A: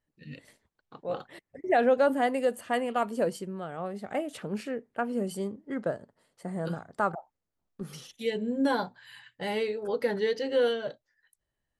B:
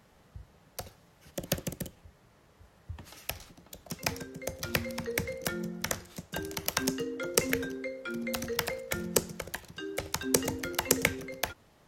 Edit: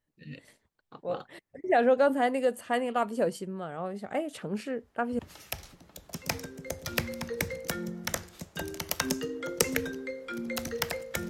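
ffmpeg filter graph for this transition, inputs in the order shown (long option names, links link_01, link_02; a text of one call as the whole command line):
ffmpeg -i cue0.wav -i cue1.wav -filter_complex "[1:a]asplit=2[link_01][link_02];[0:a]apad=whole_dur=11.29,atrim=end=11.29,atrim=end=5.192[link_03];[link_02]atrim=start=2.958:end=9.06[link_04];[link_01]atrim=start=2.45:end=2.96,asetpts=PTS-STARTPTS,volume=-11dB,afade=type=in:duration=0.004:curve=hsin,afade=type=out:start_time=0.506:duration=0.004:curve=hsin,adelay=4680[link_05];[link_03][link_04]acrossfade=duration=0.004:curve1=hsin:curve2=hsin[link_06];[link_06][link_05]amix=inputs=2:normalize=0" out.wav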